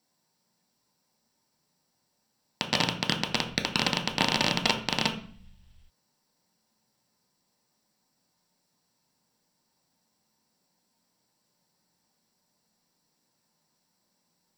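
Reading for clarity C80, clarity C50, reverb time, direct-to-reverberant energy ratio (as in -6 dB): 13.5 dB, 9.5 dB, 0.50 s, 1.5 dB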